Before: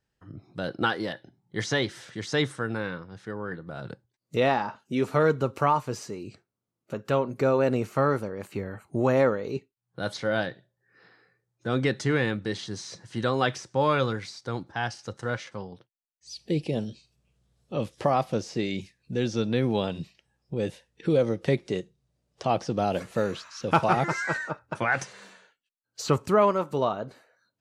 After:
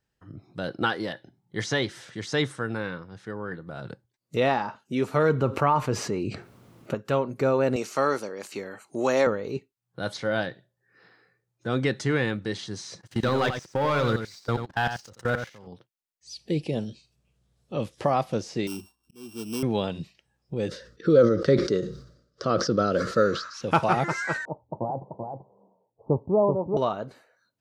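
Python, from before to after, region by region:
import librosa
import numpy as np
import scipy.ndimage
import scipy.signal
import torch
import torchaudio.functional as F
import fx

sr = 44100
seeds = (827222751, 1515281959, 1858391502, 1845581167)

y = fx.chain(x, sr, fx.bass_treble(bass_db=1, treble_db=-9),
    fx.env_flatten(amount_pct=50), at=(5.29, 6.95))
y = fx.chain(y, sr, fx.highpass(hz=270.0, slope=12),
    fx.peak_eq(hz=5700.0, db=13.0, octaves=1.5), at=(7.76, 9.27))
y = fx.chain(y, sr, fx.leveller(passes=2),
    fx.level_steps(step_db=24),
    fx.echo_single(ms=88, db=-8.0), at=(13.01, 15.67))
y = fx.chain(y, sr, fx.sample_sort(block=16),
    fx.fixed_phaser(hz=530.0, stages=6),
    fx.auto_swell(attack_ms=544.0), at=(18.67, 19.63))
y = fx.chain(y, sr, fx.curve_eq(hz=(120.0, 550.0, 830.0, 1300.0, 2500.0, 4800.0, 9700.0), db=(0, 6, -16, 12, -10, 6, -13)),
    fx.sustainer(db_per_s=90.0), at=(20.68, 23.54))
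y = fx.chain(y, sr, fx.steep_lowpass(hz=950.0, slope=72),
    fx.echo_single(ms=385, db=-5.5), at=(24.45, 26.77))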